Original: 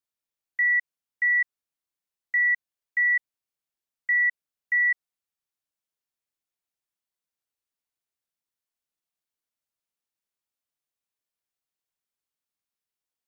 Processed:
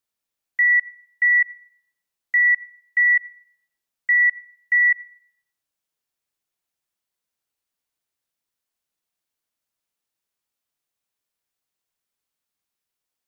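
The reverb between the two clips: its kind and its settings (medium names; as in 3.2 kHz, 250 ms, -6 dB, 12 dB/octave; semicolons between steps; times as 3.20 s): Schroeder reverb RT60 0.63 s, combs from 33 ms, DRR 18.5 dB; trim +5.5 dB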